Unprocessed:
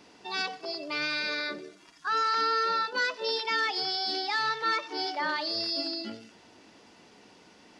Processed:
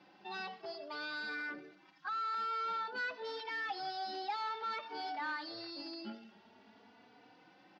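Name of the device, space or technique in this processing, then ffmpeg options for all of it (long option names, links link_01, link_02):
barber-pole flanger into a guitar amplifier: -filter_complex "[0:a]asplit=2[link_01][link_02];[link_02]adelay=3.4,afreqshift=0.52[link_03];[link_01][link_03]amix=inputs=2:normalize=1,asoftclip=type=tanh:threshold=-32.5dB,highpass=100,equalizer=frequency=210:width_type=q:width=4:gain=6,equalizer=frequency=800:width_type=q:width=4:gain=8,equalizer=frequency=1500:width_type=q:width=4:gain=5,lowpass=frequency=4400:width=0.5412,lowpass=frequency=4400:width=1.3066,volume=-5.5dB"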